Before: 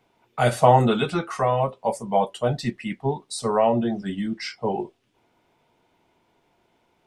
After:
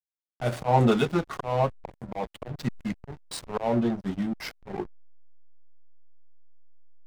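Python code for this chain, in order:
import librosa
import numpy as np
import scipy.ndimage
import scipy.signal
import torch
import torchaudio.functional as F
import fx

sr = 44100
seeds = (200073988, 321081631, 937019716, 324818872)

y = fx.auto_swell(x, sr, attack_ms=186.0)
y = fx.backlash(y, sr, play_db=-26.0)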